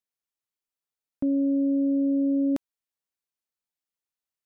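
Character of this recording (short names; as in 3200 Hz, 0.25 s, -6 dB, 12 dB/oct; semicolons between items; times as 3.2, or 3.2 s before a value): noise floor -92 dBFS; spectral tilt -6.0 dB/oct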